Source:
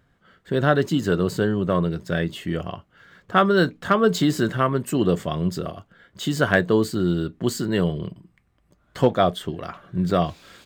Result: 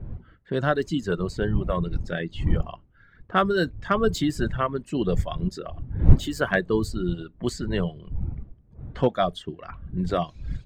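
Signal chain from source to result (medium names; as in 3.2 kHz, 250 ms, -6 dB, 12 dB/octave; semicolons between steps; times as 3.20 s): wind noise 97 Hz -23 dBFS; reverb removal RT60 1.3 s; level-controlled noise filter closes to 2.2 kHz, open at -15.5 dBFS; trim -3.5 dB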